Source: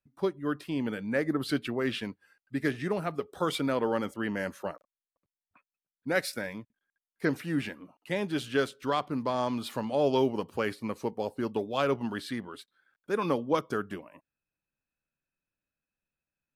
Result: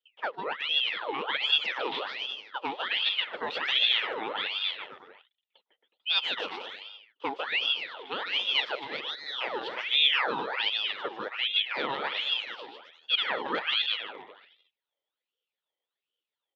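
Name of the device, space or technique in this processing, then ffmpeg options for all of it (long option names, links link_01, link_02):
voice changer toy: -filter_complex "[0:a]asettb=1/sr,asplit=3[link_01][link_02][link_03];[link_01]atrim=end=8.604[link_04];[link_02]atrim=start=8.6:end=9.41,asetpts=PTS-STARTPTS,afade=type=in:duration=0.004:curve=qsin,afade=type=out:start_time=0.806:duration=0.004:curve=qsin,highpass=frequency=1000:width=0.5412,highpass=frequency=1000:width=1.3066[link_05];[link_03]atrim=start=9.406[link_06];[link_04][link_05]acrossfade=duration=0.004:curve1=hsin:curve2=qsin[link_07];[link_07][link_06]acrossfade=duration=0.004:curve1=qsin:curve2=hsin,aecho=1:1:150|270|366|442.8|504.2:0.631|0.398|0.251|0.158|0.1,aeval=exprs='val(0)*sin(2*PI*1800*n/s+1800*0.7/1.3*sin(2*PI*1.3*n/s))':channel_layout=same,highpass=460,equalizer=frequency=480:width_type=q:width=4:gain=5,equalizer=frequency=700:width_type=q:width=4:gain=-5,equalizer=frequency=1100:width_type=q:width=4:gain=-7,equalizer=frequency=1600:width_type=q:width=4:gain=-6,equalizer=frequency=2300:width_type=q:width=4:gain=-5,equalizer=frequency=3400:width_type=q:width=4:gain=8,lowpass=frequency=3700:width=0.5412,lowpass=frequency=3700:width=1.3066,volume=3dB"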